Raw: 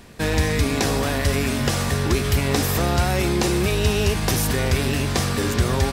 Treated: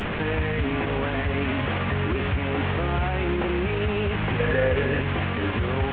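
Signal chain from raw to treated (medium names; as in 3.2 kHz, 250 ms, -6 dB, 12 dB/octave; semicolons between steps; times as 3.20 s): one-bit delta coder 16 kbps, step -21 dBFS; flange 0.51 Hz, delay 9.8 ms, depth 2.6 ms, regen -50%; peak limiter -20 dBFS, peak gain reduction 8.5 dB; 4.39–5.01 s: small resonant body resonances 490/1700 Hz, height 14 dB; trim +3.5 dB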